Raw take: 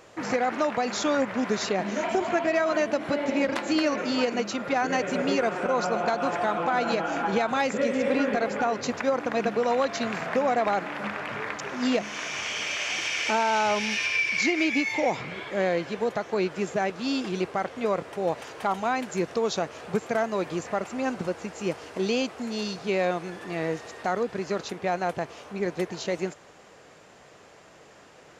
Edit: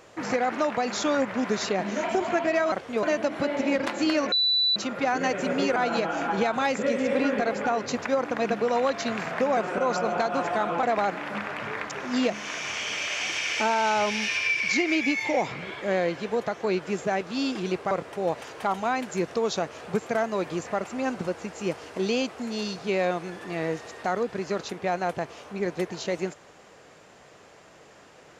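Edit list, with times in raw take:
4.01–4.45 bleep 3970 Hz -19.5 dBFS
5.45–6.71 move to 10.52
17.6–17.91 move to 2.72

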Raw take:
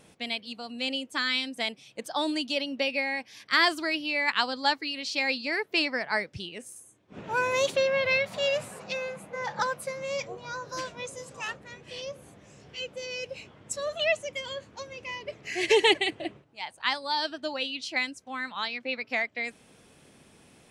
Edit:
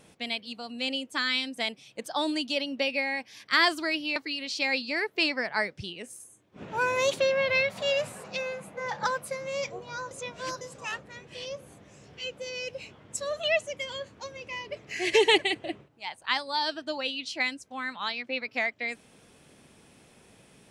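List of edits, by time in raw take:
4.16–4.72 cut
10.67–11.17 reverse

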